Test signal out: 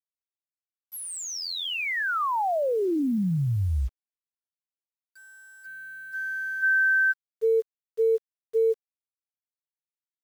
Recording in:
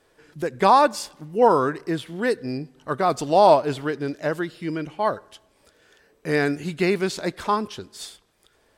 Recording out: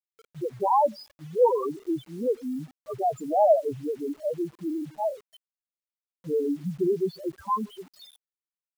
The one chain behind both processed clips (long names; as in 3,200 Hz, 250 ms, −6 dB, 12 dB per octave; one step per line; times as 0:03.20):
spectral peaks only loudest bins 2
bit reduction 9 bits